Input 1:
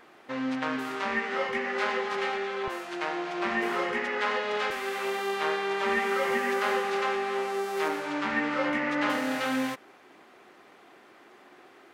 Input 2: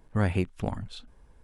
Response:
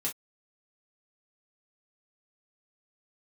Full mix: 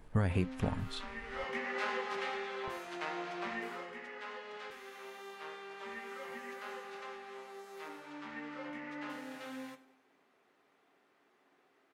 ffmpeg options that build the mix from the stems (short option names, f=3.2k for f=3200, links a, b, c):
-filter_complex "[0:a]volume=-9.5dB,afade=t=in:st=1.21:d=0.37:silence=0.375837,afade=t=out:st=3.25:d=0.62:silence=0.316228,asplit=3[a][b][c];[b]volume=-8.5dB[d];[c]volume=-16.5dB[e];[1:a]alimiter=limit=-21.5dB:level=0:latency=1:release=360,volume=0.5dB,asplit=2[f][g];[g]volume=-15dB[h];[2:a]atrim=start_sample=2205[i];[d][h]amix=inputs=2:normalize=0[j];[j][i]afir=irnorm=-1:irlink=0[k];[e]aecho=0:1:95|190|285|380|475|570|665|760:1|0.52|0.27|0.141|0.0731|0.038|0.0198|0.0103[l];[a][f][k][l]amix=inputs=4:normalize=0"